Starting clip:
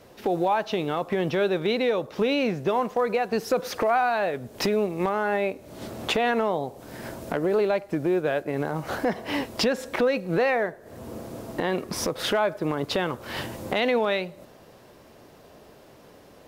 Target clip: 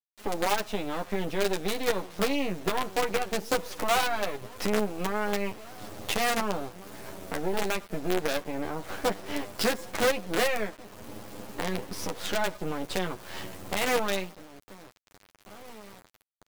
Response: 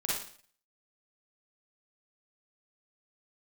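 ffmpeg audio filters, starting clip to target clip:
-filter_complex "[0:a]asplit=2[link_01][link_02];[link_02]adelay=1749,volume=-17dB,highshelf=frequency=4000:gain=-39.4[link_03];[link_01][link_03]amix=inputs=2:normalize=0,acrusher=bits=4:dc=4:mix=0:aa=0.000001,flanger=delay=9.5:depth=1.3:regen=-1:speed=0.19:shape=sinusoidal"

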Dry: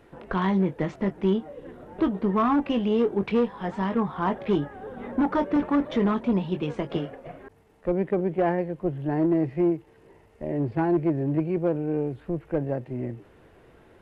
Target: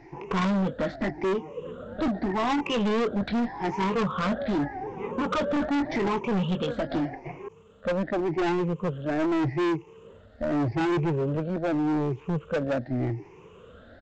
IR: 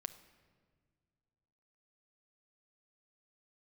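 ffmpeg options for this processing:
-af "afftfilt=real='re*pow(10,18/40*sin(2*PI*(0.75*log(max(b,1)*sr/1024/100)/log(2)-(0.84)*(pts-256)/sr)))':imag='im*pow(10,18/40*sin(2*PI*(0.75*log(max(b,1)*sr/1024/100)/log(2)-(0.84)*(pts-256)/sr)))':win_size=1024:overlap=0.75,aresample=16000,asoftclip=type=hard:threshold=-24dB,aresample=44100,volume=1dB"

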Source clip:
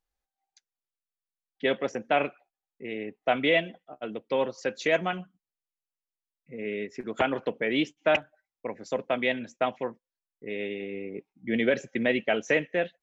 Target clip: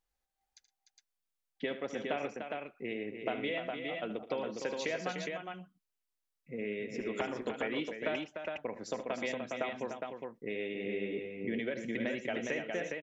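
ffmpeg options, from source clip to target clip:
ffmpeg -i in.wav -filter_complex "[0:a]acompressor=threshold=-34dB:ratio=6,asplit=2[link_01][link_02];[link_02]aecho=0:1:76|114|298|411:0.237|0.112|0.422|0.631[link_03];[link_01][link_03]amix=inputs=2:normalize=0" out.wav

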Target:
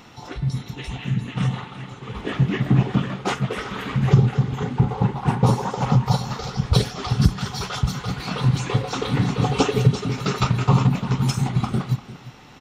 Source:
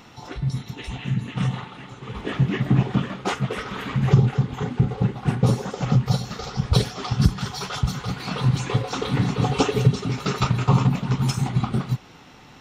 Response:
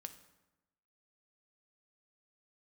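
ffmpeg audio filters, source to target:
-filter_complex "[0:a]asettb=1/sr,asplit=3[link_01][link_02][link_03];[link_01]atrim=end=4.784[link_04];[link_02]atrim=start=4.78:end=6.39,asetpts=PTS-STARTPTS,afade=type=in:duration=0.004:curve=qsin,afade=type=out:start_time=1.606:duration=0.004:curve=qsin,equalizer=frequency=930:width_type=o:width=0.45:gain=12.5[link_05];[link_03]atrim=start=6.386[link_06];[link_04][link_05]acrossfade=duration=0.004:curve1=hsin:curve2=qsin[link_07];[link_07][link_06]acrossfade=duration=0.004:curve1=qsin:curve2=hsin,asplit=2[link_08][link_09];[link_09]aecho=0:1:347:0.141[link_10];[link_08][link_10]amix=inputs=2:normalize=0,volume=1dB"

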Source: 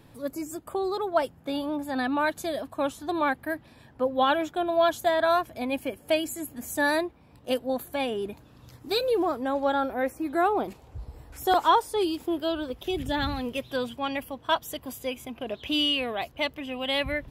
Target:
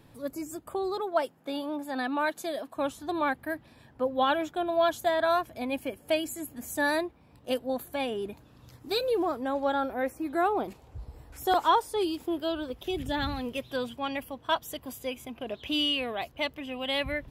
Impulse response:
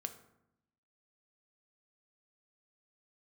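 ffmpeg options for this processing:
-filter_complex "[0:a]asettb=1/sr,asplit=3[link_01][link_02][link_03];[link_01]atrim=end=1.004[link_04];[link_02]atrim=start=1:end=2.76,asetpts=PTS-STARTPTS,afade=type=in:duration=0.004:curve=qsin,afade=type=out:start_time=1.756:duration=0.004:curve=qsin,highpass=230[link_05];[link_03]atrim=start=2.756[link_06];[link_04][link_05]acrossfade=duration=0.004:curve1=hsin:curve2=qsin[link_07];[link_07][link_06]acrossfade=duration=0.004:curve1=qsin:curve2=hsin,volume=-2.5dB"

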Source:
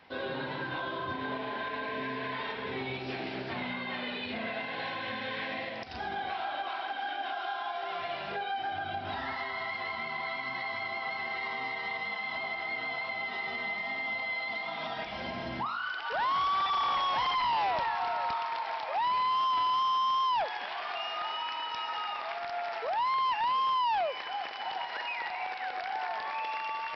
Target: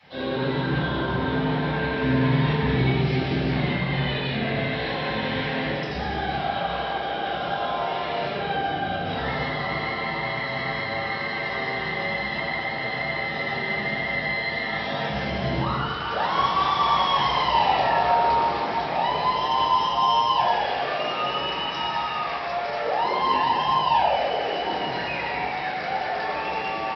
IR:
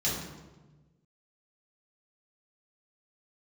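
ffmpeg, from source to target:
-filter_complex "[0:a]asettb=1/sr,asplit=3[link_01][link_02][link_03];[link_01]atrim=end=2.024[link_04];[link_02]atrim=start=2.02:end=2.87,asetpts=PTS-STARTPTS,afade=type=in:duration=0.004:curve=qsin,afade=type=out:start_time=0.846:duration=0.004:curve=qsin,bass=frequency=250:gain=10,treble=frequency=4000:gain=1[link_05];[link_03]atrim=start=2.866[link_06];[link_04][link_05]acrossfade=duration=0.004:curve1=hsin:curve2=qsin[link_07];[link_07][link_06]acrossfade=duration=0.004:curve1=qsin:curve2=hsin,asplit=9[link_08][link_09][link_10][link_11][link_12][link_13][link_14][link_15][link_16];[link_09]adelay=196,afreqshift=-110,volume=-6.5dB[link_17];[link_10]adelay=392,afreqshift=-220,volume=-11.1dB[link_18];[link_11]adelay=588,afreqshift=-330,volume=-15.7dB[link_19];[link_12]adelay=784,afreqshift=-440,volume=-20.2dB[link_20];[link_13]adelay=980,afreqshift=-550,volume=-24.8dB[link_21];[link_14]adelay=1176,afreqshift=-660,volume=-29.4dB[link_22];[link_15]adelay=1372,afreqshift=-770,volume=-34dB[link_23];[link_16]adelay=1568,afreqshift=-880,volume=-38.6dB[link_24];[link_08][link_17][link_18][link_19][link_20][link_21][link_22][link_23][link_24]amix=inputs=9:normalize=0[link_25];[1:a]atrim=start_sample=2205,afade=type=out:start_time=0.34:duration=0.01,atrim=end_sample=15435[link_26];[link_25][link_26]afir=irnorm=-1:irlink=0,volume=-1dB"

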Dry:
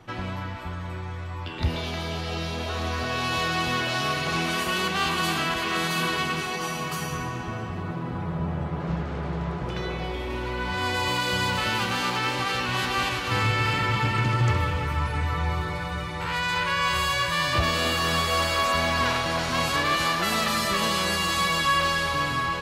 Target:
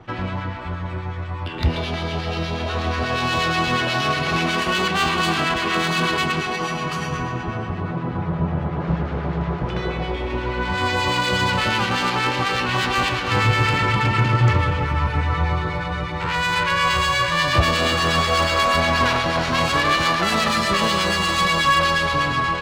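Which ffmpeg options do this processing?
ffmpeg -i in.wav -filter_complex "[0:a]adynamicsmooth=sensitivity=2.5:basefreq=4400,acrossover=split=1300[link_01][link_02];[link_01]aeval=exprs='val(0)*(1-0.5/2+0.5/2*cos(2*PI*8.3*n/s))':channel_layout=same[link_03];[link_02]aeval=exprs='val(0)*(1-0.5/2-0.5/2*cos(2*PI*8.3*n/s))':channel_layout=same[link_04];[link_03][link_04]amix=inputs=2:normalize=0,volume=8dB" out.wav

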